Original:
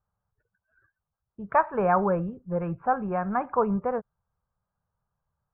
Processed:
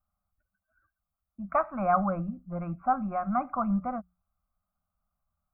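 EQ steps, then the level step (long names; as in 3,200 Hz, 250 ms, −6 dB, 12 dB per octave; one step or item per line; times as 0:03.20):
mains-hum notches 60/120/180 Hz
phaser with its sweep stopped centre 620 Hz, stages 8
phaser with its sweep stopped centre 1,700 Hz, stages 6
+4.5 dB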